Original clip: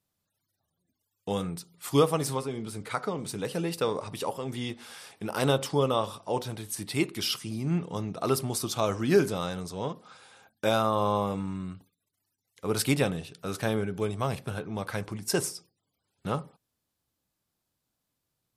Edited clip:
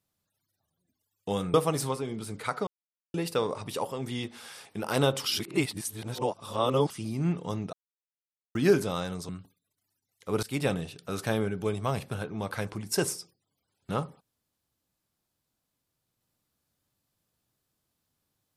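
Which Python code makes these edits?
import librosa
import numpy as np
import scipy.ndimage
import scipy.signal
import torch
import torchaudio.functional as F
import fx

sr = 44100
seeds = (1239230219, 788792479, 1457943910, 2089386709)

y = fx.edit(x, sr, fx.cut(start_s=1.54, length_s=0.46),
    fx.silence(start_s=3.13, length_s=0.47),
    fx.reverse_span(start_s=5.7, length_s=1.66),
    fx.silence(start_s=8.19, length_s=0.82),
    fx.cut(start_s=9.75, length_s=1.9),
    fx.fade_in_from(start_s=12.79, length_s=0.29, floor_db=-21.5), tone=tone)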